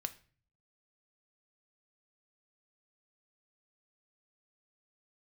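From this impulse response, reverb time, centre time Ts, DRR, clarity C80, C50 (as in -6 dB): 0.40 s, 5 ms, 9.0 dB, 21.0 dB, 16.5 dB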